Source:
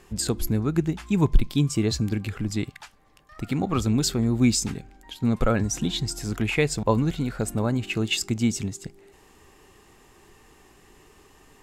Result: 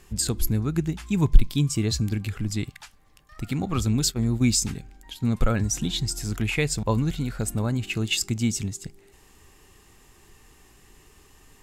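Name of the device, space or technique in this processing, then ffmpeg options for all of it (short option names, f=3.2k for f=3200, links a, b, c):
smiley-face EQ: -filter_complex "[0:a]asplit=3[a][b][c];[a]afade=t=out:st=3.98:d=0.02[d];[b]agate=range=-15dB:threshold=-24dB:ratio=16:detection=peak,afade=t=in:st=3.98:d=0.02,afade=t=out:st=4.5:d=0.02[e];[c]afade=t=in:st=4.5:d=0.02[f];[d][e][f]amix=inputs=3:normalize=0,lowshelf=f=120:g=4.5,equalizer=f=530:t=o:w=2.9:g=-5,highshelf=f=6.2k:g=4.5"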